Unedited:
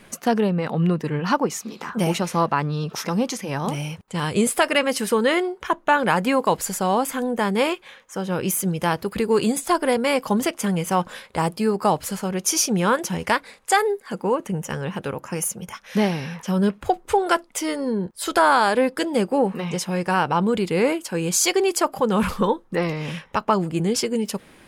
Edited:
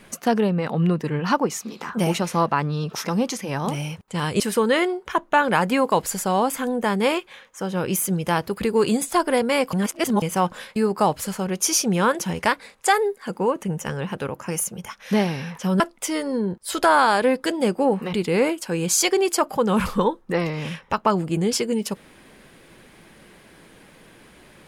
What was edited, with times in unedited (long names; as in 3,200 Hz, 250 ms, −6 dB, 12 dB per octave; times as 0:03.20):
0:04.40–0:04.95: remove
0:10.28–0:10.77: reverse
0:11.31–0:11.60: remove
0:16.64–0:17.33: remove
0:19.66–0:20.56: remove